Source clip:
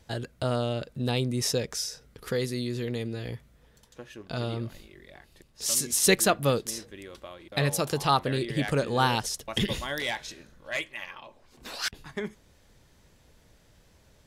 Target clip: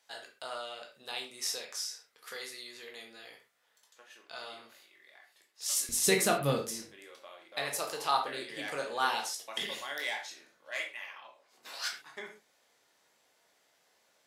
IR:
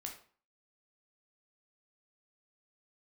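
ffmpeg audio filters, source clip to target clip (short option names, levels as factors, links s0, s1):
-filter_complex "[0:a]asetnsamples=n=441:p=0,asendcmd='5.89 highpass f 110;6.9 highpass f 560',highpass=890[s0];[1:a]atrim=start_sample=2205,atrim=end_sample=6174[s1];[s0][s1]afir=irnorm=-1:irlink=0,volume=0.841"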